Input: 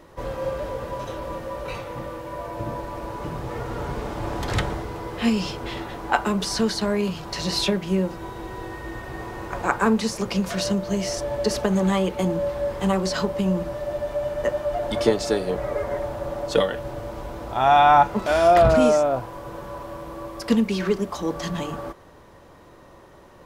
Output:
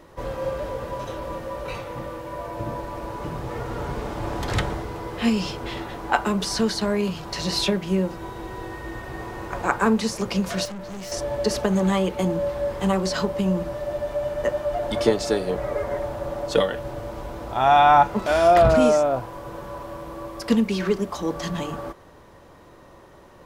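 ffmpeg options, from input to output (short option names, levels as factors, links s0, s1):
-filter_complex "[0:a]asettb=1/sr,asplit=3[s0][s1][s2];[s0]atrim=end=10.654[s3];[s1]atrim=start=10.65:end=11.12,asetpts=PTS-STARTPTS,afade=t=in:d=0.004:c=qsin,afade=t=out:st=0.466:d=0.004:c=qsin,aeval=exprs='(tanh(44.7*val(0)+0.25)-tanh(0.25))/44.7':c=same[s4];[s2]atrim=start=11.116[s5];[s3][s4]acrossfade=d=0.004:c1=hsin:c2=qsin[s6];[s6][s5]acrossfade=d=0.004:c1=qsin:c2=hsin"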